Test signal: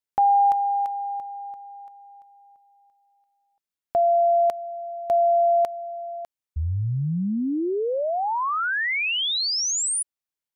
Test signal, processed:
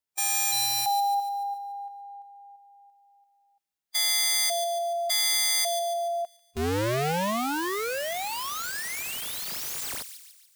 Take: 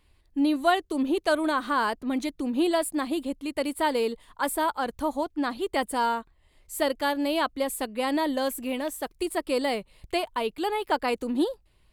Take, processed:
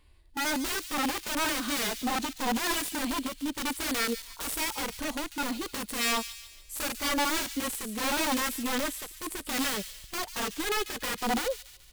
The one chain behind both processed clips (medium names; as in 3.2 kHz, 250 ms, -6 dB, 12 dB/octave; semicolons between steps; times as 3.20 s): integer overflow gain 25.5 dB; harmonic-percussive split percussive -13 dB; feedback echo behind a high-pass 144 ms, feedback 48%, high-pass 3.1 kHz, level -8.5 dB; trim +4.5 dB